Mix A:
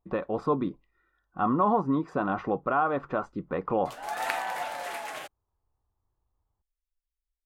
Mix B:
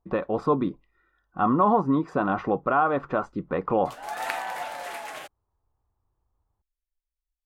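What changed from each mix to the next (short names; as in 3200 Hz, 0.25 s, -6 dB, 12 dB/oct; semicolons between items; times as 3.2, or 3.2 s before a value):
speech +3.5 dB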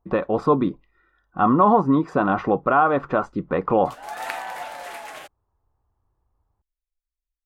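speech +4.5 dB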